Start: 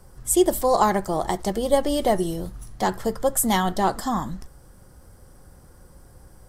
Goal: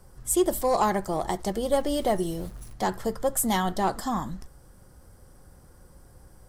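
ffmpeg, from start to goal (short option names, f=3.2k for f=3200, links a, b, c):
-filter_complex "[0:a]asettb=1/sr,asplit=3[a][b][c];[a]atrim=end=1.774[d];[b]atrim=start=1.77:end=2.74,asetpts=PTS-STARTPTS,afade=t=in:d=0.004:c=qsin,afade=t=out:st=0.966:d=0.004:c=qsin,aeval=exprs='val(0)*gte(abs(val(0)),0.0075)':c=same[e];[c]atrim=start=2.736[f];[d][e]acrossfade=d=0.004:c1=hsin:c2=qsin[g];[g][f]acrossfade=d=0.004:c1=qsin:c2=hsin,aeval=exprs='0.562*(cos(1*acos(clip(val(0)/0.562,-1,1)))-cos(1*PI/2))+0.0355*(cos(5*acos(clip(val(0)/0.562,-1,1)))-cos(5*PI/2))':c=same,volume=-5.5dB"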